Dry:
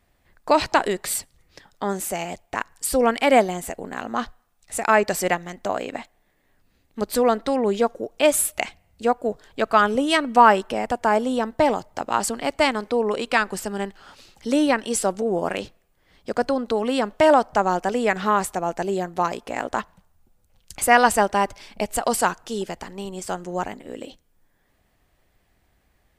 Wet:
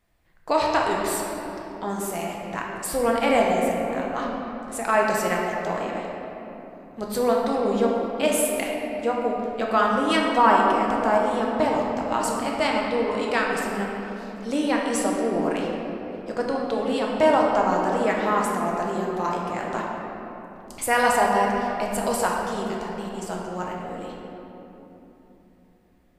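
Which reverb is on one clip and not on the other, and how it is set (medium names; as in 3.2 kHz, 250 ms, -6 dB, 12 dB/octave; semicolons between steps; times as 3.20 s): simulated room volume 200 m³, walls hard, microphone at 0.63 m; trim -6 dB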